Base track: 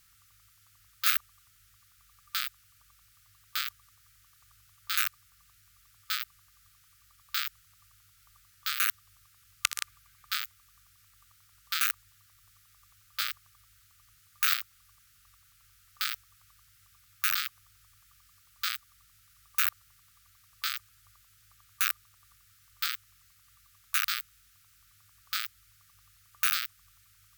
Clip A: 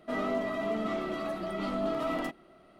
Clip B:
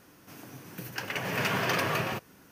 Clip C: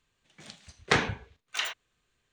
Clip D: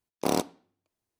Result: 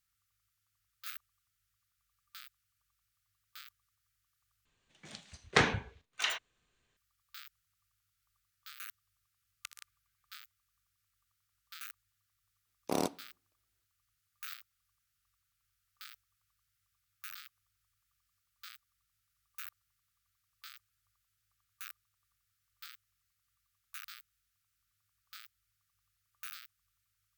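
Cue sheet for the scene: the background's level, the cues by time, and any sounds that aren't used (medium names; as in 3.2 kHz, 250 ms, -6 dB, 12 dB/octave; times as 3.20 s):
base track -19 dB
4.65 s: replace with C -2 dB
12.66 s: add D -6.5 dB
not used: A, B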